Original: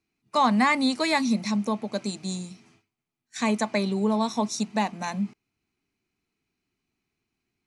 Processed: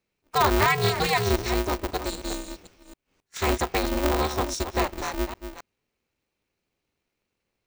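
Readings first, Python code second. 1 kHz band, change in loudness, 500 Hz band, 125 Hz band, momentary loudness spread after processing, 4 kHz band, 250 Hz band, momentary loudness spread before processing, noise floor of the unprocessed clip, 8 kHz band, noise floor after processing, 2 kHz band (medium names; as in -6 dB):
+1.0 dB, +0.5 dB, +3.5 dB, +5.0 dB, 14 LU, +2.0 dB, -6.0 dB, 12 LU, -84 dBFS, +2.5 dB, -82 dBFS, +1.5 dB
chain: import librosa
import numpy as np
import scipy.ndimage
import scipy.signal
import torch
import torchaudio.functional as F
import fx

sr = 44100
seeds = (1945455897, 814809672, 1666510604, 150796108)

y = fx.reverse_delay(x, sr, ms=267, wet_db=-10)
y = y * np.sign(np.sin(2.0 * np.pi * 150.0 * np.arange(len(y)) / sr))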